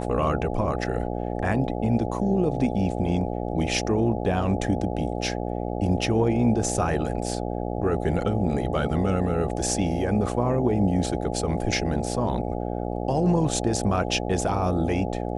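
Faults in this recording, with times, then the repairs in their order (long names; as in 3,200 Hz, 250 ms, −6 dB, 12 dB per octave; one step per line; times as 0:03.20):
mains buzz 60 Hz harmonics 14 −29 dBFS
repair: hum removal 60 Hz, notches 14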